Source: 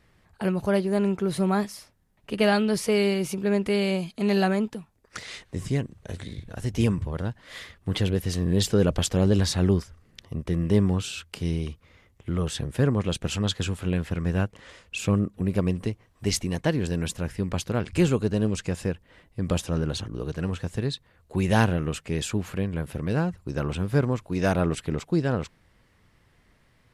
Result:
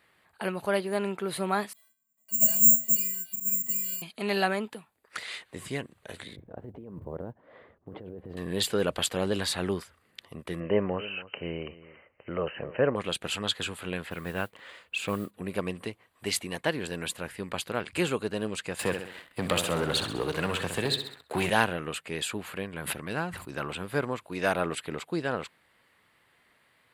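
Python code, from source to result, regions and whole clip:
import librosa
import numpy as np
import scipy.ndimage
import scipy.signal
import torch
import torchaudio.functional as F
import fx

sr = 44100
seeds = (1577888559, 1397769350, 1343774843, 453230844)

y = fx.chain(x, sr, fx.low_shelf(hz=430.0, db=5.0),
    fx.comb_fb(f0_hz=220.0, decay_s=0.35, harmonics='odd', damping=0.0, mix_pct=100),
    fx.resample_bad(factor=6, down='filtered', up='zero_stuff'), at=(1.73, 4.02))
y = fx.chain(y, sr, fx.cheby1_lowpass(hz=540.0, order=2),
    fx.quant_float(bits=8),
    fx.over_compress(threshold_db=-30.0, ratio=-1.0), at=(6.36, 8.37))
y = fx.chain(y, sr, fx.brickwall_lowpass(high_hz=3100.0),
    fx.peak_eq(hz=560.0, db=10.5, octaves=0.65),
    fx.echo_single(ms=283, db=-17.5), at=(10.6, 12.96))
y = fx.chain(y, sr, fx.high_shelf(hz=8500.0, db=-9.0),
    fx.mod_noise(seeds[0], snr_db=32), at=(14.06, 15.31))
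y = fx.chain(y, sr, fx.echo_feedback(ms=65, feedback_pct=48, wet_db=-10),
    fx.leveller(passes=2),
    fx.band_squash(depth_pct=40), at=(18.79, 21.5))
y = fx.chain(y, sr, fx.peak_eq(hz=490.0, db=-4.5, octaves=0.57),
    fx.sustainer(db_per_s=39.0), at=(22.76, 23.68))
y = fx.highpass(y, sr, hz=880.0, slope=6)
y = fx.peak_eq(y, sr, hz=6100.0, db=-11.0, octaves=0.5)
y = fx.notch(y, sr, hz=5300.0, q=12.0)
y = F.gain(torch.from_numpy(y), 3.0).numpy()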